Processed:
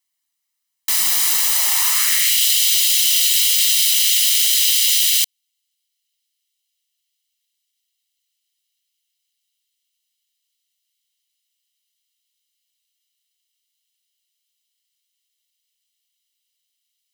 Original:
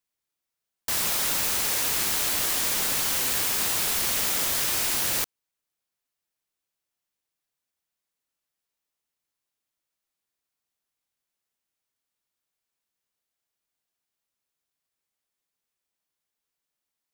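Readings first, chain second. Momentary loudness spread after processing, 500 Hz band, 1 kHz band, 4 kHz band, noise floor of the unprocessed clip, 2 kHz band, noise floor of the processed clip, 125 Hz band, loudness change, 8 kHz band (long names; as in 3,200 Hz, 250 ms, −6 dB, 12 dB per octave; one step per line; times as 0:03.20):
3 LU, below −10 dB, can't be measured, +13.0 dB, below −85 dBFS, +5.0 dB, −76 dBFS, below −20 dB, +10.0 dB, +10.0 dB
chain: lower of the sound and its delayed copy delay 1 ms
tilt shelving filter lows −10 dB
high-pass filter sweep 230 Hz → 3,100 Hz, 0:01.23–0:02.40
level +1 dB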